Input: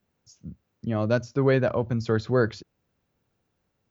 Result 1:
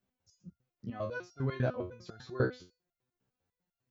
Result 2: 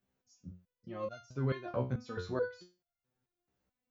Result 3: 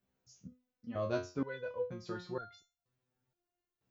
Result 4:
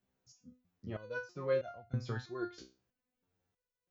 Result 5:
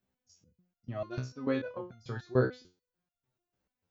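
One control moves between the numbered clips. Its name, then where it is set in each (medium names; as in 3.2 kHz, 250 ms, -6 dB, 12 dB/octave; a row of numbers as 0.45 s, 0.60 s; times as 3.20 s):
resonator arpeggio, rate: 10 Hz, 4.6 Hz, 2.1 Hz, 3.1 Hz, 6.8 Hz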